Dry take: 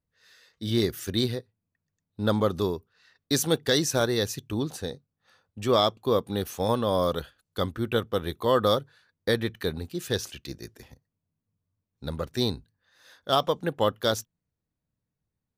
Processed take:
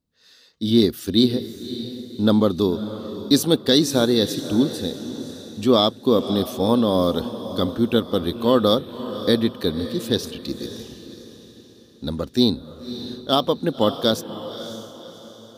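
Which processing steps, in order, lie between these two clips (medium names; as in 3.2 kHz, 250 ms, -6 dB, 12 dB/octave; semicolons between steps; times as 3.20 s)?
graphic EQ 125/250/2000/4000 Hz -3/+11/-6/+7 dB; on a send: echo that smears into a reverb 568 ms, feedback 41%, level -12 dB; on the sum: dynamic bell 6.5 kHz, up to -6 dB, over -48 dBFS, Q 2.6; trim +2.5 dB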